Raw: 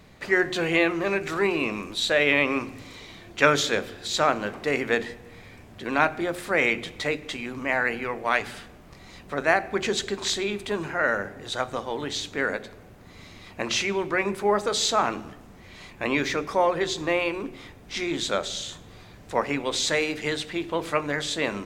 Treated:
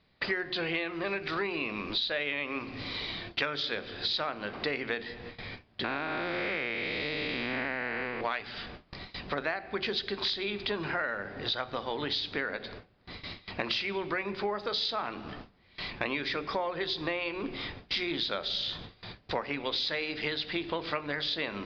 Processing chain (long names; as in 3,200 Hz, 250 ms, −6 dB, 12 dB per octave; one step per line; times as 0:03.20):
0:05.84–0:08.21: spectrum smeared in time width 378 ms
noise gate with hold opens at −35 dBFS
Chebyshev low-pass filter 4,900 Hz, order 6
high-shelf EQ 3,300 Hz +11.5 dB
downward compressor 10 to 1, threshold −33 dBFS, peak gain reduction 21.5 dB
level +4 dB